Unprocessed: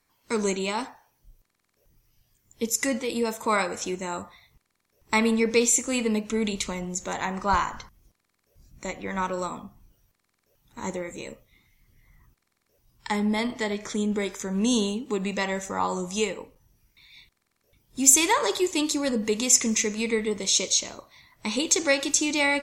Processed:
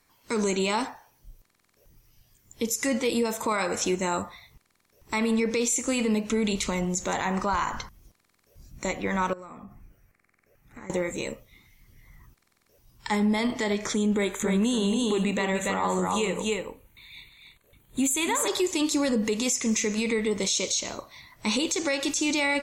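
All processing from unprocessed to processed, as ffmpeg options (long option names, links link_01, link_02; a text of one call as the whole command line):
ffmpeg -i in.wav -filter_complex "[0:a]asettb=1/sr,asplit=3[link_01][link_02][link_03];[link_01]atrim=end=9.334[link_04];[link_02]atrim=start=9.33:end=10.9,asetpts=PTS-STARTPTS,afade=type=in:duration=0.004:curve=qsin,afade=type=out:start_time=1.566:duration=0.004:curve=qsin,highshelf=frequency=2700:width_type=q:width=3:gain=-7,bandreject=frequency=950:width=6.1,acompressor=threshold=-45dB:ratio=8:attack=3.2:release=140:knee=1:detection=peak[link_05];[link_03]atrim=start=10.896[link_06];[link_04][link_05]acrossfade=duration=0.004:curve1=hsin:curve2=qsin[link_07];[link_07][link_06]acrossfade=duration=0.004:curve1=qsin:curve2=hsin,asettb=1/sr,asplit=3[link_08][link_09][link_10];[link_08]atrim=end=14.144[link_11];[link_09]atrim=start=14.14:end=18.48,asetpts=PTS-STARTPTS,afade=type=in:duration=0.004:curve=qsin,afade=type=out:start_time=4.336:duration=0.004:curve=qsin,asuperstop=centerf=5300:order=4:qfactor=2.1,aecho=1:1:286:0.531,atrim=end_sample=191394[link_12];[link_10]atrim=start=18.476[link_13];[link_11][link_12]acrossfade=duration=0.004:curve1=hsin:curve2=qsin[link_14];[link_14][link_13]acrossfade=duration=0.004:curve1=qsin:curve2=hsin,acompressor=threshold=-25dB:ratio=6,alimiter=limit=-22.5dB:level=0:latency=1:release=15,volume=5.5dB" out.wav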